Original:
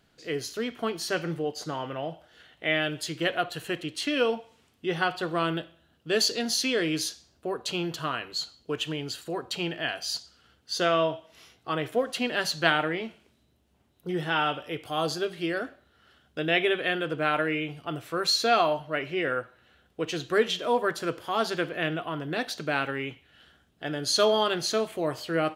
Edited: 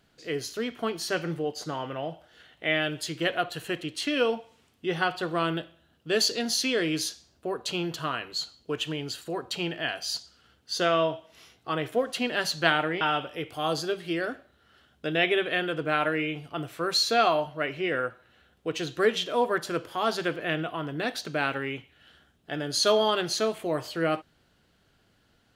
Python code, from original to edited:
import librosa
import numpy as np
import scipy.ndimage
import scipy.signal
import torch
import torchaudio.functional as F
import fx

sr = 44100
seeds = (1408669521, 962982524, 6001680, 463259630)

y = fx.edit(x, sr, fx.cut(start_s=13.01, length_s=1.33), tone=tone)